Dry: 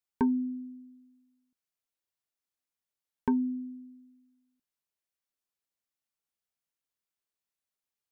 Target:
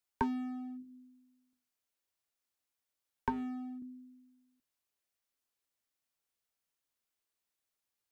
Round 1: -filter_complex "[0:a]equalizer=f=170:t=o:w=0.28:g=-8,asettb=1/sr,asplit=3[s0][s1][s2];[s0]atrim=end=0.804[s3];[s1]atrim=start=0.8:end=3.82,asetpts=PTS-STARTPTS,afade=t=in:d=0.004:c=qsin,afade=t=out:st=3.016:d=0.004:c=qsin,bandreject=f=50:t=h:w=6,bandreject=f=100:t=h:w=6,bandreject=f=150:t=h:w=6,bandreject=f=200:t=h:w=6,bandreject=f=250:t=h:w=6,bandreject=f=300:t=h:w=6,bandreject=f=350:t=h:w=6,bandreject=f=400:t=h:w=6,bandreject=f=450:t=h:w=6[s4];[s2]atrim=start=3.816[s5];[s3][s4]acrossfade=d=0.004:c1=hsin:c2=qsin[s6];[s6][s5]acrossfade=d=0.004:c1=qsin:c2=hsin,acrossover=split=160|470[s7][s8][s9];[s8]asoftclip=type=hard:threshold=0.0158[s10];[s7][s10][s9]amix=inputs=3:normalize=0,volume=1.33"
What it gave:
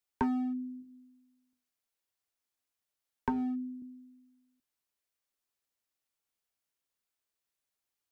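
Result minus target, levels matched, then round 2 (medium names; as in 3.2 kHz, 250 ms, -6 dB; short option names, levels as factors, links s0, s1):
hard clipper: distortion -5 dB
-filter_complex "[0:a]equalizer=f=170:t=o:w=0.28:g=-8,asettb=1/sr,asplit=3[s0][s1][s2];[s0]atrim=end=0.804[s3];[s1]atrim=start=0.8:end=3.82,asetpts=PTS-STARTPTS,afade=t=in:d=0.004:c=qsin,afade=t=out:st=3.016:d=0.004:c=qsin,bandreject=f=50:t=h:w=6,bandreject=f=100:t=h:w=6,bandreject=f=150:t=h:w=6,bandreject=f=200:t=h:w=6,bandreject=f=250:t=h:w=6,bandreject=f=300:t=h:w=6,bandreject=f=350:t=h:w=6,bandreject=f=400:t=h:w=6,bandreject=f=450:t=h:w=6[s4];[s2]atrim=start=3.816[s5];[s3][s4]acrossfade=d=0.004:c1=hsin:c2=qsin[s6];[s6][s5]acrossfade=d=0.004:c1=qsin:c2=hsin,acrossover=split=160|470[s7][s8][s9];[s8]asoftclip=type=hard:threshold=0.00473[s10];[s7][s10][s9]amix=inputs=3:normalize=0,volume=1.33"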